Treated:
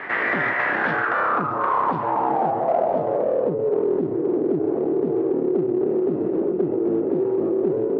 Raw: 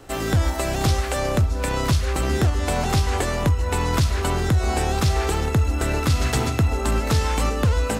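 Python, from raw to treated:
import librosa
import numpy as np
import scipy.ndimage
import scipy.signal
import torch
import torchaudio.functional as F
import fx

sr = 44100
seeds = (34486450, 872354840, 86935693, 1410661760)

p1 = np.abs(x)
p2 = fx.filter_sweep_lowpass(p1, sr, from_hz=1900.0, to_hz=380.0, start_s=0.57, end_s=4.03, q=7.0)
p3 = np.clip(10.0 ** (15.5 / 20.0) * p2, -1.0, 1.0) / 10.0 ** (15.5 / 20.0)
p4 = p2 + F.gain(torch.from_numpy(p3), -8.5).numpy()
p5 = fx.bandpass_edges(p4, sr, low_hz=280.0, high_hz=3200.0)
p6 = fx.env_flatten(p5, sr, amount_pct=50)
y = F.gain(torch.from_numpy(p6), -4.0).numpy()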